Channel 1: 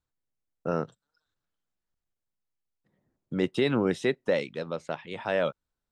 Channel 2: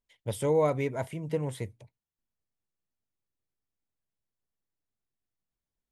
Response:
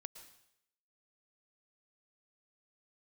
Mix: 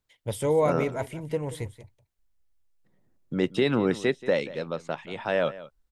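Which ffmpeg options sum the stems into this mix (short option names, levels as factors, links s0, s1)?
-filter_complex "[0:a]volume=1.19,asplit=2[s0][s1];[s1]volume=0.141[s2];[1:a]asubboost=boost=12:cutoff=59,volume=1.33,asplit=2[s3][s4];[s4]volume=0.168[s5];[s2][s5]amix=inputs=2:normalize=0,aecho=0:1:180:1[s6];[s0][s3][s6]amix=inputs=3:normalize=0"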